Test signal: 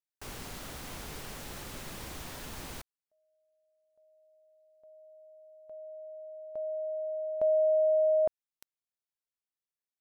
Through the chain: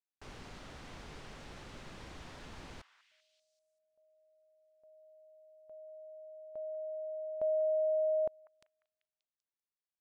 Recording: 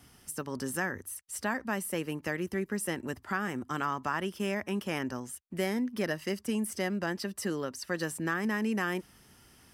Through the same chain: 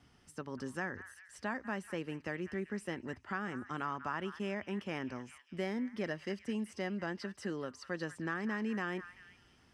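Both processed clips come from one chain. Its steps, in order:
high-frequency loss of the air 100 metres
echo through a band-pass that steps 194 ms, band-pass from 1,500 Hz, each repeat 0.7 octaves, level −10.5 dB
level −5.5 dB

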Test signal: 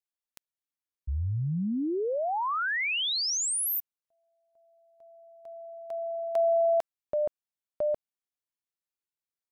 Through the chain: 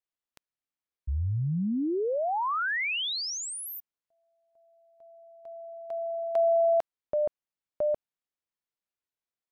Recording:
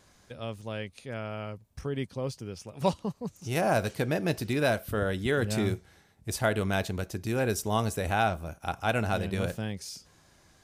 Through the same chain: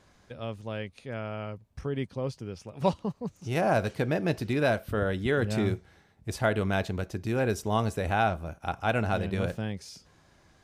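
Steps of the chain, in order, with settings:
high-shelf EQ 5,800 Hz −12 dB
level +1 dB

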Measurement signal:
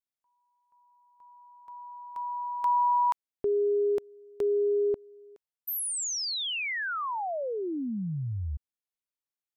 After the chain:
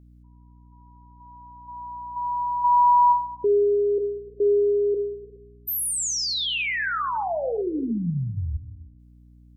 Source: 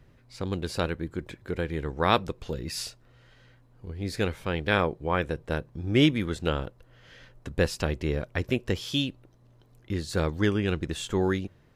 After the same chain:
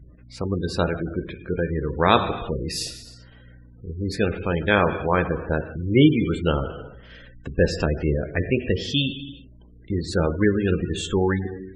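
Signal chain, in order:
reverb whose tail is shaped and stops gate 420 ms falling, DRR 6 dB
gate on every frequency bin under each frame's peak −20 dB strong
mains hum 60 Hz, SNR 26 dB
level +5 dB

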